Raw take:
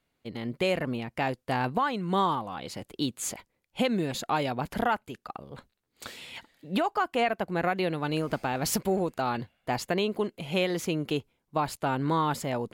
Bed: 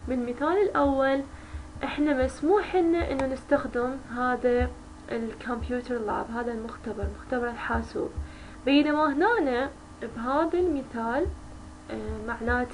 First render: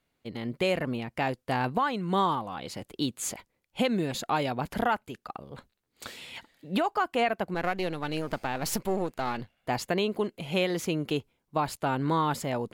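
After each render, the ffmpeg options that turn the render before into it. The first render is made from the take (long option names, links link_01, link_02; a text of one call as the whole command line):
ffmpeg -i in.wav -filter_complex "[0:a]asettb=1/sr,asplit=3[link_01][link_02][link_03];[link_01]atrim=end=7.544[link_04];[link_02]atrim=start=7.54:end=9.57,asetpts=PTS-STARTPTS,afade=type=in:duration=0.004:curve=qsin,afade=type=out:start_time=2.026:duration=0.004:curve=qsin,aeval=exprs='if(lt(val(0),0),0.447*val(0),val(0))':channel_layout=same[link_05];[link_03]atrim=start=9.566[link_06];[link_04][link_05]acrossfade=duration=0.004:curve1=hsin:curve2=qsin[link_07];[link_07][link_06]acrossfade=duration=0.004:curve1=qsin:curve2=hsin" out.wav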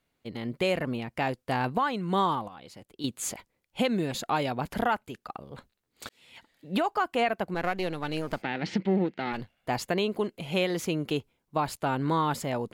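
ffmpeg -i in.wav -filter_complex "[0:a]asplit=3[link_01][link_02][link_03];[link_01]afade=type=out:start_time=8.41:duration=0.02[link_04];[link_02]highpass=130,equalizer=frequency=190:width_type=q:width=4:gain=10,equalizer=frequency=330:width_type=q:width=4:gain=6,equalizer=frequency=640:width_type=q:width=4:gain=-5,equalizer=frequency=1100:width_type=q:width=4:gain=-10,equalizer=frequency=2000:width_type=q:width=4:gain=8,equalizer=frequency=3100:width_type=q:width=4:gain=3,lowpass=frequency=4300:width=0.5412,lowpass=frequency=4300:width=1.3066,afade=type=in:start_time=8.41:duration=0.02,afade=type=out:start_time=9.32:duration=0.02[link_05];[link_03]afade=type=in:start_time=9.32:duration=0.02[link_06];[link_04][link_05][link_06]amix=inputs=3:normalize=0,asplit=4[link_07][link_08][link_09][link_10];[link_07]atrim=end=2.482[link_11];[link_08]atrim=start=2.478:end=3.042,asetpts=PTS-STARTPTS,volume=-9.5dB[link_12];[link_09]atrim=start=3.038:end=6.09,asetpts=PTS-STARTPTS,afade=type=out:start_time=3.048:duration=0.004:curve=hsin[link_13];[link_10]atrim=start=6.09,asetpts=PTS-STARTPTS,afade=type=in:duration=0.68[link_14];[link_11][link_12]acrossfade=duration=0.004:curve1=hsin:curve2=hsin[link_15];[link_13][link_14]concat=n=2:v=0:a=1[link_16];[link_15][link_16]acrossfade=duration=0.004:curve1=hsin:curve2=hsin" out.wav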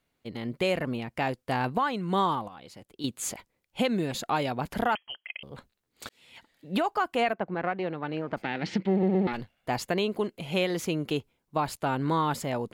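ffmpeg -i in.wav -filter_complex "[0:a]asettb=1/sr,asplit=3[link_01][link_02][link_03];[link_01]atrim=end=4.954[link_04];[link_02]atrim=start=4.95:end=5.43,asetpts=PTS-STARTPTS,afade=type=in:duration=0.004:curve=qsin,afade=type=out:start_time=0.476:duration=0.004:curve=qsin,lowpass=frequency=2800:width_type=q:width=0.5098,lowpass=frequency=2800:width_type=q:width=0.6013,lowpass=frequency=2800:width_type=q:width=0.9,lowpass=frequency=2800:width_type=q:width=2.563,afreqshift=-3300[link_05];[link_03]atrim=start=5.426[link_06];[link_04][link_05]acrossfade=duration=0.004:curve1=hsin:curve2=qsin[link_07];[link_07][link_06]acrossfade=duration=0.004:curve1=qsin:curve2=hsin,asplit=3[link_08][link_09][link_10];[link_08]afade=type=out:start_time=7.32:duration=0.02[link_11];[link_09]highpass=110,lowpass=2100,afade=type=in:start_time=7.32:duration=0.02,afade=type=out:start_time=8.36:duration=0.02[link_12];[link_10]afade=type=in:start_time=8.36:duration=0.02[link_13];[link_11][link_12][link_13]amix=inputs=3:normalize=0,asplit=4[link_14][link_15][link_16][link_17];[link_14]atrim=end=9.032[link_18];[link_15]atrim=start=8.908:end=9.032[link_19];[link_16]atrim=start=8.908:end=9.032[link_20];[link_17]atrim=start=9.268[link_21];[link_18][link_19]acrossfade=duration=0.004:curve1=hsin:curve2=hsin[link_22];[link_22][link_20]acrossfade=duration=0.004:curve1=hsin:curve2=hsin[link_23];[link_23][link_21]acrossfade=duration=0.004:curve1=hsin:curve2=hsin" out.wav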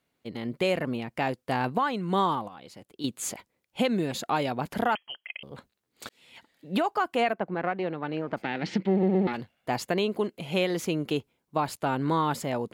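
ffmpeg -i in.wav -af "highpass=frequency=160:poles=1,lowshelf=frequency=430:gain=3.5" out.wav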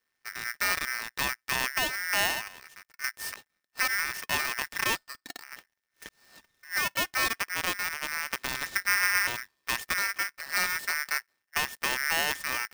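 ffmpeg -i in.wav -af "aeval=exprs='max(val(0),0)':channel_layout=same,aeval=exprs='val(0)*sgn(sin(2*PI*1800*n/s))':channel_layout=same" out.wav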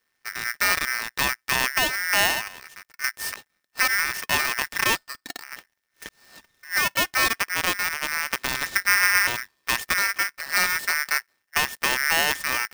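ffmpeg -i in.wav -af "volume=6dB" out.wav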